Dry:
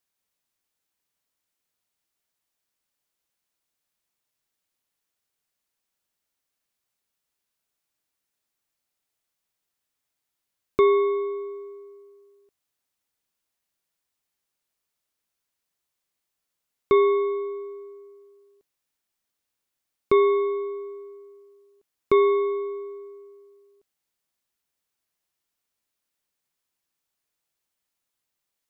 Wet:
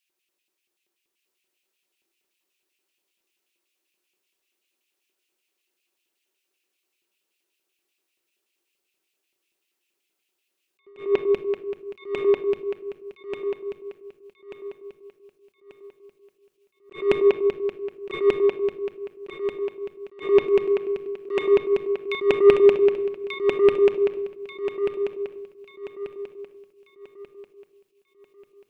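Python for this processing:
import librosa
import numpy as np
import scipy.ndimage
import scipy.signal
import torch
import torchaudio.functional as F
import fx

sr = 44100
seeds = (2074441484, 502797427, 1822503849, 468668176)

y = fx.peak_eq(x, sr, hz=160.0, db=13.5, octaves=3.0, at=(22.31, 22.97))
y = fx.filter_lfo_highpass(y, sr, shape='square', hz=5.2, low_hz=350.0, high_hz=2600.0, q=5.4)
y = 10.0 ** (-7.0 / 20.0) * np.tanh(y / 10.0 ** (-7.0 / 20.0))
y = fx.echo_feedback(y, sr, ms=1187, feedback_pct=36, wet_db=-3.0)
y = fx.room_shoebox(y, sr, seeds[0], volume_m3=2100.0, walls='furnished', distance_m=1.1)
y = fx.attack_slew(y, sr, db_per_s=170.0)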